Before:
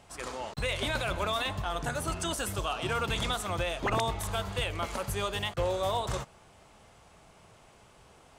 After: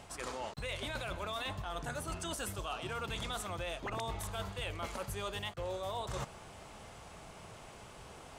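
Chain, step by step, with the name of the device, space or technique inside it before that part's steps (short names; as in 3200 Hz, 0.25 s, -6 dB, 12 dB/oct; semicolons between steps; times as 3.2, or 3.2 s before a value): compression on the reversed sound (reverse; compressor 6:1, threshold -43 dBFS, peak gain reduction 16.5 dB; reverse); gain +5.5 dB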